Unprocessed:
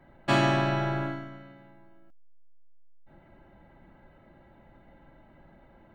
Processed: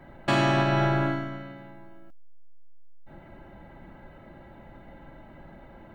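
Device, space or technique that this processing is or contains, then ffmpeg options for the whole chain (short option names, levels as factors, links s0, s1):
soft clipper into limiter: -af "asoftclip=type=tanh:threshold=0.224,alimiter=limit=0.0794:level=0:latency=1:release=365,volume=2.51"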